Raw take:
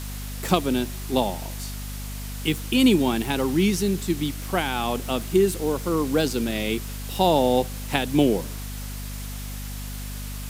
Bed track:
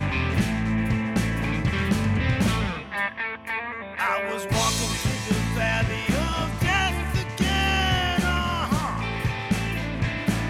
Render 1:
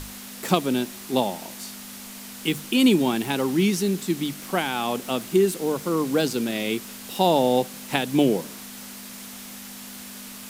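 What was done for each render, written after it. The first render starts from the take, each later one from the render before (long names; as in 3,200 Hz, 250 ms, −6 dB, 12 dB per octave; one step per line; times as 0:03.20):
mains-hum notches 50/100/150 Hz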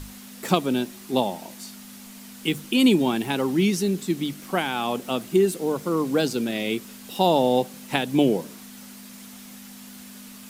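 broadband denoise 6 dB, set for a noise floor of −40 dBFS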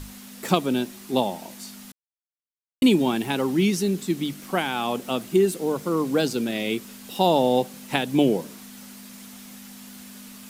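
0:01.92–0:02.82: silence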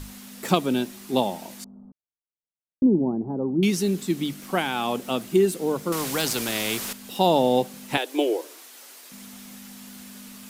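0:01.64–0:03.63: Gaussian smoothing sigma 12 samples
0:05.92–0:06.93: every bin compressed towards the loudest bin 2 to 1
0:07.97–0:09.12: Chebyshev high-pass filter 320 Hz, order 5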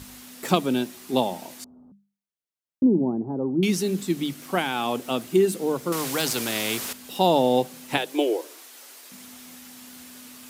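high-pass filter 61 Hz
mains-hum notches 50/100/150/200 Hz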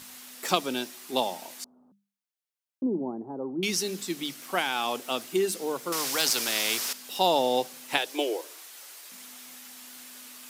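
dynamic equaliser 5,300 Hz, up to +6 dB, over −47 dBFS, Q 2.3
high-pass filter 730 Hz 6 dB per octave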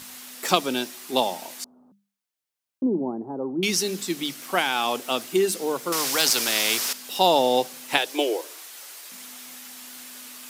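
level +4.5 dB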